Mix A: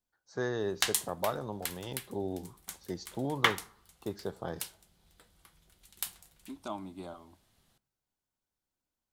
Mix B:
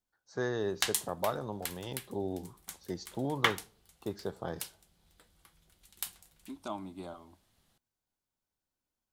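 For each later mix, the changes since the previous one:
background: send off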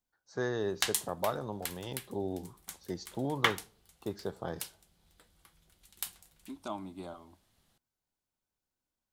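no change

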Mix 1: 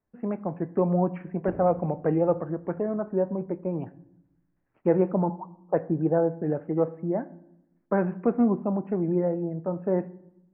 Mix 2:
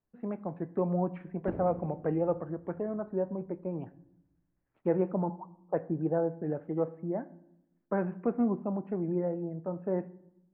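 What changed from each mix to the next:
speech -6.0 dB; master: remove Butterworth band-stop 3.7 kHz, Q 2.4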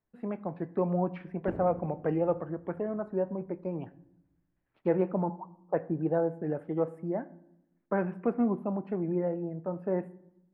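speech: remove distance through air 480 m

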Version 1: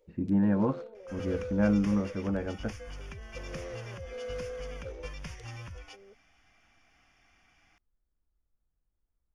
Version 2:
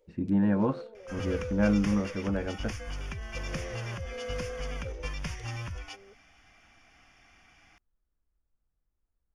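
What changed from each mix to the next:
speech: remove distance through air 330 m; second sound +6.0 dB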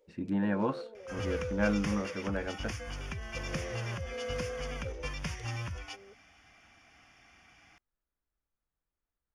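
speech: add tilt EQ +2.5 dB/octave; second sound: add high-pass 56 Hz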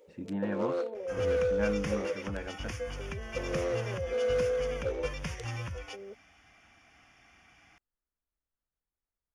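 speech -4.0 dB; first sound +10.0 dB; master: add peaking EQ 4.7 kHz -3 dB 0.61 oct

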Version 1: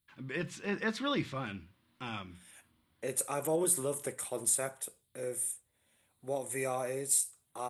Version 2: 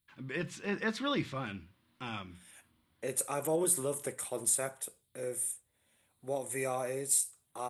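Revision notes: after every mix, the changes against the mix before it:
no change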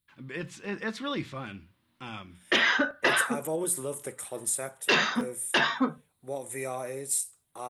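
background: unmuted

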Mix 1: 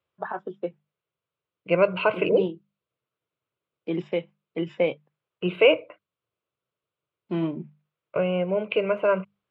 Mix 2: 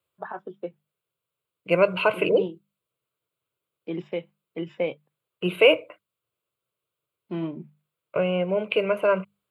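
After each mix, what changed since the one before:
first voice -3.5 dB; second voice: remove distance through air 170 m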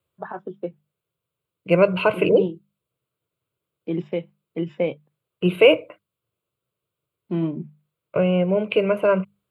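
master: add bass shelf 360 Hz +10 dB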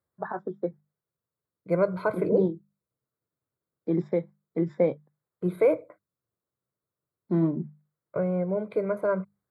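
second voice -7.5 dB; master: add Butterworth band-stop 2.8 kHz, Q 1.5

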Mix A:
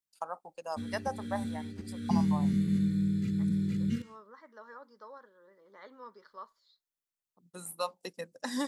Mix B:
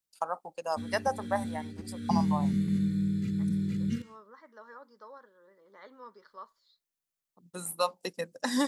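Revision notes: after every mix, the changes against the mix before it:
first voice +5.5 dB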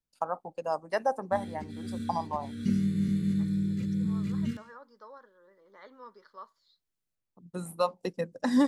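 first voice: add tilt EQ -3 dB/octave; background: entry +0.55 s

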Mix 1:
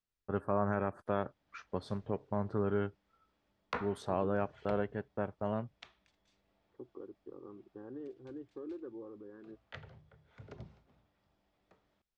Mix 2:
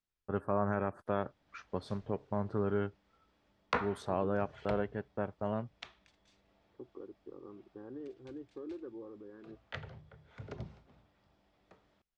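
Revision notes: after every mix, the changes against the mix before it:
background +5.5 dB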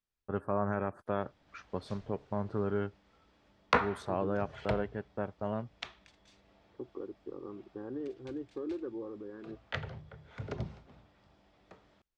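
second voice +6.0 dB; background +6.0 dB

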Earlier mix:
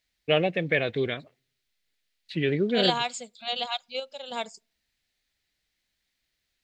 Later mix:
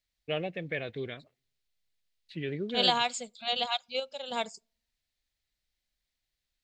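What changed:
first voice -10.0 dB; master: add bass shelf 78 Hz +7 dB

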